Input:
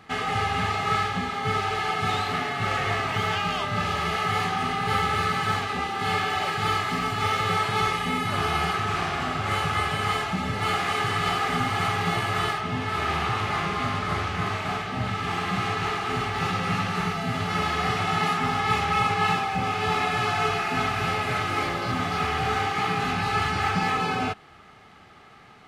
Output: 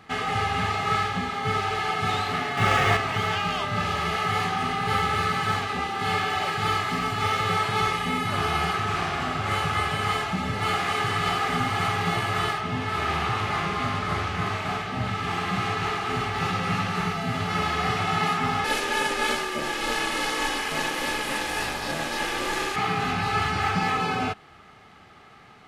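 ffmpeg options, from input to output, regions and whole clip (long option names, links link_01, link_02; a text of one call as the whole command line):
ffmpeg -i in.wav -filter_complex "[0:a]asettb=1/sr,asplit=3[link_01][link_02][link_03];[link_01]atrim=end=2.574[link_04];[link_02]atrim=start=2.57:end=2.97,asetpts=PTS-STARTPTS,afade=type=in:duration=0.004:curve=qsin,afade=type=out:start_time=0.396:duration=0.004:curve=qsin,bandreject=frequency=4200:width=15,acontrast=51,aeval=exprs='sgn(val(0))*max(abs(val(0))-0.01,0)':channel_layout=same[link_05];[link_03]atrim=start=2.966[link_06];[link_04][link_05]acrossfade=duration=0.004:curve1=hsin:curve2=qsin[link_07];[link_07][link_06]acrossfade=duration=0.004:curve1=qsin:curve2=hsin,asettb=1/sr,asplit=3[link_08][link_09][link_10];[link_08]atrim=end=18.644[link_11];[link_09]atrim=start=18.64:end=22.76,asetpts=PTS-STARTPTS,afade=type=in:duration=0.004:curve=qsin,afade=type=out:start_time=4.116:duration=0.004:curve=qsin,lowpass=frequency=12000:width=0.5412,lowpass=frequency=12000:width=1.3066,aemphasis=mode=production:type=75fm,aeval=exprs='val(0)*sin(2*PI*410*n/s)':channel_layout=same[link_12];[link_10]atrim=start=22.756[link_13];[link_11][link_12]acrossfade=duration=0.004:curve1=hsin:curve2=qsin[link_14];[link_14][link_13]acrossfade=duration=0.004:curve1=qsin:curve2=hsin" out.wav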